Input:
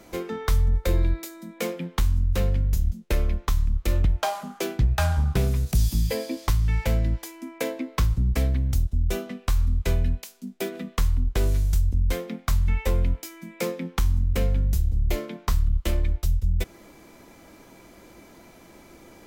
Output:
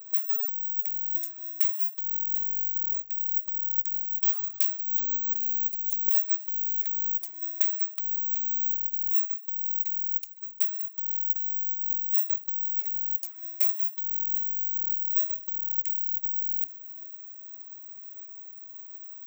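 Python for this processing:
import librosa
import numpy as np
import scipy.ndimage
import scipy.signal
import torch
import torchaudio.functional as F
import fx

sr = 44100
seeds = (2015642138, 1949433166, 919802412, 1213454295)

p1 = fx.wiener(x, sr, points=15)
p2 = fx.env_flanger(p1, sr, rest_ms=4.5, full_db=-19.5)
p3 = (np.kron(scipy.signal.resample_poly(p2, 1, 2), np.eye(2)[0]) * 2)[:len(p2)]
p4 = fx.over_compress(p3, sr, threshold_db=-27.0, ratio=-1.0)
p5 = librosa.effects.preemphasis(p4, coef=0.97, zi=[0.0])
p6 = p5 + fx.echo_single(p5, sr, ms=509, db=-19.0, dry=0)
y = p6 * 10.0 ** (-4.0 / 20.0)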